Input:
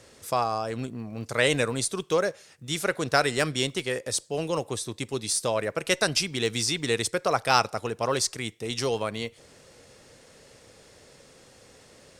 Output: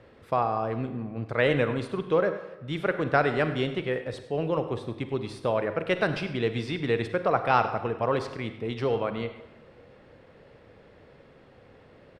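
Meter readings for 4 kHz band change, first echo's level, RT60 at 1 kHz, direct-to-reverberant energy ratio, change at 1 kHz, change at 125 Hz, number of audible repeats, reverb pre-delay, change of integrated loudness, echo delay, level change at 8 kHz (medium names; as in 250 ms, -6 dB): -10.0 dB, -15.5 dB, 1.1 s, 9.0 dB, +0.5 dB, +2.0 dB, 1, 37 ms, -1.0 dB, 100 ms, under -25 dB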